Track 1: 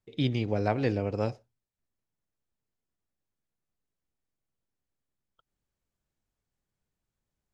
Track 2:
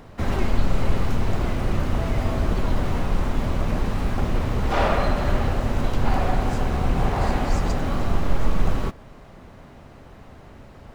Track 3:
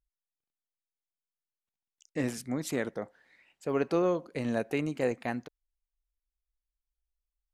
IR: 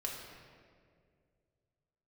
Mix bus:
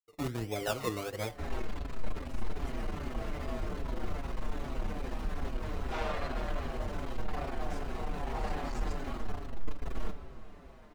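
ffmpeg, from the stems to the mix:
-filter_complex "[0:a]equalizer=frequency=180:width_type=o:width=1.7:gain=-12,acrusher=samples=22:mix=1:aa=0.000001:lfo=1:lforange=13.2:lforate=1.4,volume=0dB,asplit=2[link_01][link_02];[link_02]volume=-18dB[link_03];[1:a]equalizer=frequency=120:width=1.6:gain=-8.5,asoftclip=type=tanh:threshold=-22.5dB,adelay=1200,volume=-9dB,asplit=2[link_04][link_05];[link_05]volume=-3.5dB[link_06];[2:a]volume=-19.5dB[link_07];[3:a]atrim=start_sample=2205[link_08];[link_03][link_06]amix=inputs=2:normalize=0[link_09];[link_09][link_08]afir=irnorm=-1:irlink=0[link_10];[link_01][link_04][link_07][link_10]amix=inputs=4:normalize=0,agate=range=-33dB:threshold=-46dB:ratio=3:detection=peak,asplit=2[link_11][link_12];[link_12]adelay=5.9,afreqshift=-2.5[link_13];[link_11][link_13]amix=inputs=2:normalize=1"

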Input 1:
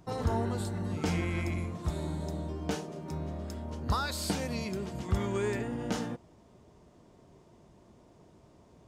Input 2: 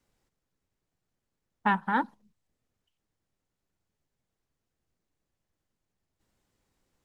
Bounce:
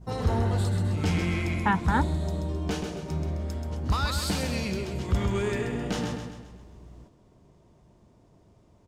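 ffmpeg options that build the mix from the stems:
ffmpeg -i stem1.wav -i stem2.wav -filter_complex "[0:a]adynamicequalizer=threshold=0.00282:dfrequency=3000:dqfactor=0.84:tfrequency=3000:tqfactor=0.84:attack=5:release=100:ratio=0.375:range=2.5:mode=boostabove:tftype=bell,aeval=exprs='0.133*sin(PI/2*1.58*val(0)/0.133)':channel_layout=same,volume=-6dB,asplit=2[link_01][link_02];[link_02]volume=-6dB[link_03];[1:a]aeval=exprs='val(0)+0.002*(sin(2*PI*60*n/s)+sin(2*PI*2*60*n/s)/2+sin(2*PI*3*60*n/s)/3+sin(2*PI*4*60*n/s)/4+sin(2*PI*5*60*n/s)/5)':channel_layout=same,volume=0dB,asplit=2[link_04][link_05];[link_05]apad=whole_len=391451[link_06];[link_01][link_06]sidechaingate=range=-33dB:threshold=-60dB:ratio=16:detection=peak[link_07];[link_03]aecho=0:1:131|262|393|524|655|786|917:1|0.47|0.221|0.104|0.0488|0.0229|0.0108[link_08];[link_07][link_04][link_08]amix=inputs=3:normalize=0,lowshelf=frequency=140:gain=8.5" out.wav

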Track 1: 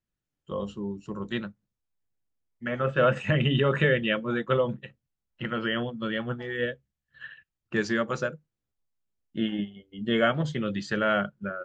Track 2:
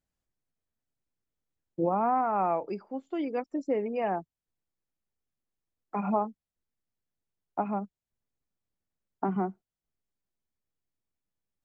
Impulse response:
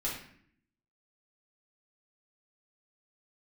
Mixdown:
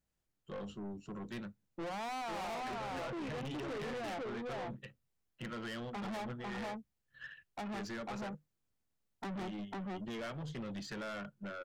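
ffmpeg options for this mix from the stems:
-filter_complex "[0:a]highpass=frequency=43:width=0.5412,highpass=frequency=43:width=1.3066,acompressor=threshold=-28dB:ratio=3,volume=-5dB[link_01];[1:a]volume=0dB,asplit=2[link_02][link_03];[link_03]volume=-4dB,aecho=0:1:498:1[link_04];[link_01][link_02][link_04]amix=inputs=3:normalize=0,aeval=exprs='(tanh(89.1*val(0)+0.15)-tanh(0.15))/89.1':channel_layout=same"

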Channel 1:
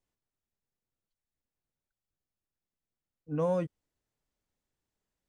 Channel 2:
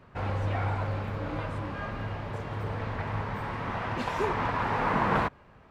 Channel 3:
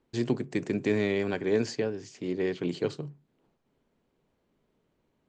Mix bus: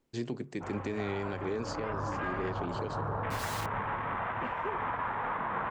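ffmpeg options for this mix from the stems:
ffmpeg -i stem1.wav -i stem2.wav -i stem3.wav -filter_complex "[0:a]aeval=exprs='(mod(63.1*val(0)+1,2)-1)/63.1':channel_layout=same,volume=2dB[link_01];[1:a]afwtdn=0.01,equalizer=frequency=1200:width=0.54:gain=9.5,dynaudnorm=framelen=270:gausssize=9:maxgain=13dB,adelay=450,volume=-14dB[link_02];[2:a]volume=-4.5dB[link_03];[link_01][link_02][link_03]amix=inputs=3:normalize=0,alimiter=level_in=0.5dB:limit=-24dB:level=0:latency=1:release=108,volume=-0.5dB" out.wav

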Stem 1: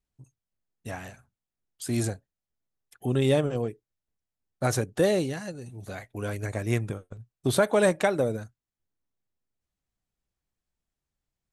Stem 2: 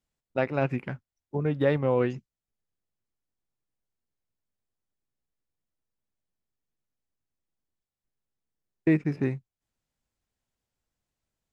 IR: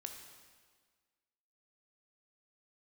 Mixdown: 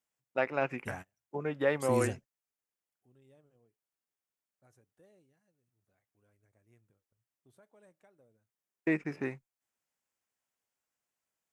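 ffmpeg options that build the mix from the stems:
-filter_complex "[0:a]volume=-5.5dB[link_01];[1:a]highpass=frequency=800:poles=1,volume=1dB,asplit=2[link_02][link_03];[link_03]apad=whole_len=508189[link_04];[link_01][link_04]sidechaingate=range=-35dB:threshold=-50dB:ratio=16:detection=peak[link_05];[link_05][link_02]amix=inputs=2:normalize=0,equalizer=frequency=4000:width_type=o:width=0.68:gain=-7"

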